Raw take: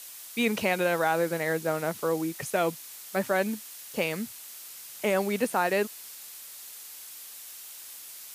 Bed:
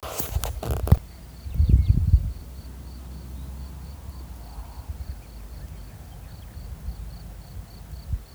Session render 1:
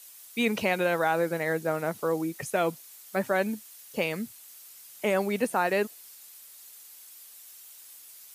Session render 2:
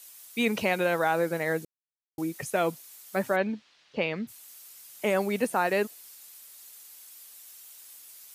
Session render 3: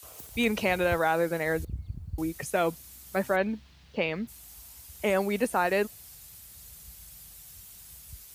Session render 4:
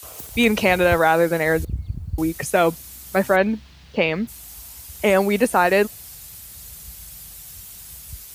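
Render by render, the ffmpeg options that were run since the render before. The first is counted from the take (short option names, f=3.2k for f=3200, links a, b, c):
-af "afftdn=nr=8:nf=-45"
-filter_complex "[0:a]asplit=3[a][b][c];[a]afade=t=out:st=3.35:d=0.02[d];[b]lowpass=f=4.2k:w=0.5412,lowpass=f=4.2k:w=1.3066,afade=t=in:st=3.35:d=0.02,afade=t=out:st=4.27:d=0.02[e];[c]afade=t=in:st=4.27:d=0.02[f];[d][e][f]amix=inputs=3:normalize=0,asplit=3[g][h][i];[g]atrim=end=1.65,asetpts=PTS-STARTPTS,afade=t=out:st=1.646:d=0.004:c=hsin[j];[h]atrim=start=1.65:end=2.18,asetpts=PTS-STARTPTS,volume=0[k];[i]atrim=start=2.18,asetpts=PTS-STARTPTS,afade=t=in:d=0.004:c=hsin[l];[j][k][l]concat=n=3:v=0:a=1"
-filter_complex "[1:a]volume=-19dB[a];[0:a][a]amix=inputs=2:normalize=0"
-af "volume=9dB"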